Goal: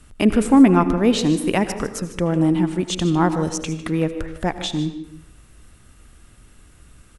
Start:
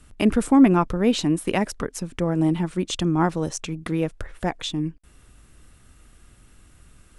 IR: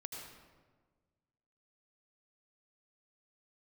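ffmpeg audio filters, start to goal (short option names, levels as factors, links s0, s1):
-filter_complex "[0:a]aecho=1:1:152:0.188,asplit=2[s0][s1];[1:a]atrim=start_sample=2205,afade=t=out:st=0.4:d=0.01,atrim=end_sample=18081[s2];[s1][s2]afir=irnorm=-1:irlink=0,volume=0.668[s3];[s0][s3]amix=inputs=2:normalize=0"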